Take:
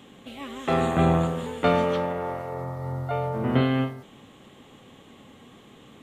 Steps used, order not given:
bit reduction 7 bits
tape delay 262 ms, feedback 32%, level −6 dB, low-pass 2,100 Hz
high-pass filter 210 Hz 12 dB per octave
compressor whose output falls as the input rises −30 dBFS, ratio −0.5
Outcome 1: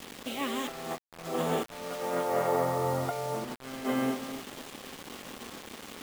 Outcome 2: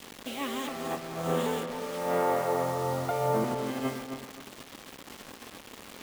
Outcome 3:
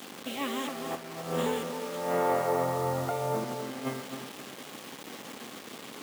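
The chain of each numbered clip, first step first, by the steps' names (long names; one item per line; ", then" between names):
tape delay, then compressor whose output falls as the input rises, then high-pass filter, then bit reduction
high-pass filter, then compressor whose output falls as the input rises, then bit reduction, then tape delay
compressor whose output falls as the input rises, then tape delay, then bit reduction, then high-pass filter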